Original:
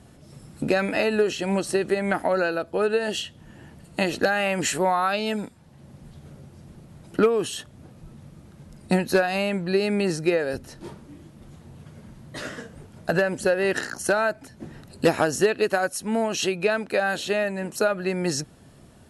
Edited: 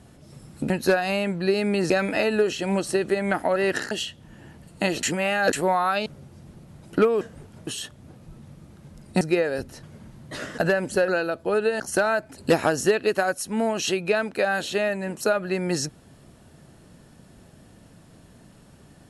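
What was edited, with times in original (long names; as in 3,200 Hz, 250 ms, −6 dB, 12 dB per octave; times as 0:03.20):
0:02.36–0:03.08: swap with 0:13.57–0:13.92
0:04.20–0:04.70: reverse
0:05.23–0:06.27: remove
0:08.96–0:10.16: move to 0:00.70
0:10.78–0:11.86: remove
0:12.61–0:13.07: move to 0:07.42
0:14.49–0:14.92: remove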